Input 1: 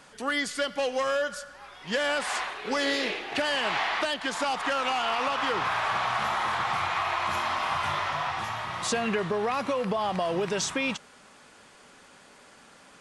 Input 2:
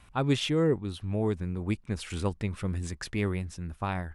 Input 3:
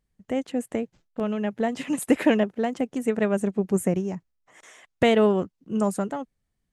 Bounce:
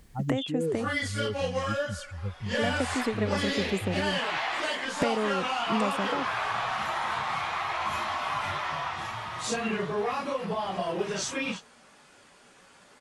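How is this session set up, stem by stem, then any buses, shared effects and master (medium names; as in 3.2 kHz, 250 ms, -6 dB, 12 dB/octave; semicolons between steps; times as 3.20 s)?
-2.5 dB, 0.60 s, no send, phase randomisation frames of 100 ms
-4.0 dB, 0.00 s, no send, spectral contrast enhancement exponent 3.5
-7.0 dB, 0.00 s, muted 0.99–2.46 s, no send, three bands compressed up and down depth 100%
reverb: none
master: none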